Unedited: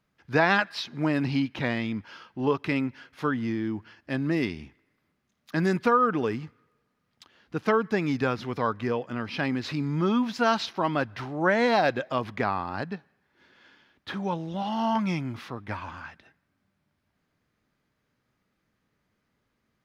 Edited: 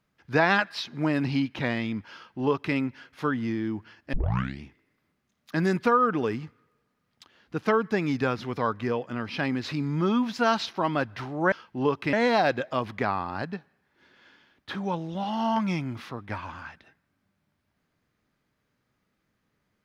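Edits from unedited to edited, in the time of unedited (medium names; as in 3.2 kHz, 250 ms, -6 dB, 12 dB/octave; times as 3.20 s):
2.14–2.75 s: copy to 11.52 s
4.13 s: tape start 0.48 s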